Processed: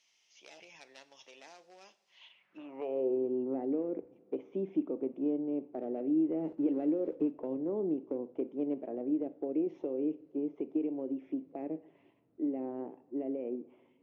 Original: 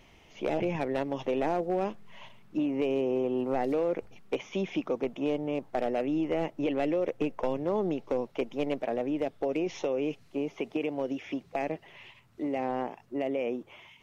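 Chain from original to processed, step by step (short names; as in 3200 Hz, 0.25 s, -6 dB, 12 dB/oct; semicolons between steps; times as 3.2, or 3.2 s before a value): 6.44–7.39 zero-crossing step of -38.5 dBFS; two-slope reverb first 0.5 s, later 2.3 s, from -18 dB, DRR 12 dB; band-pass sweep 5500 Hz -> 310 Hz, 2.08–3.2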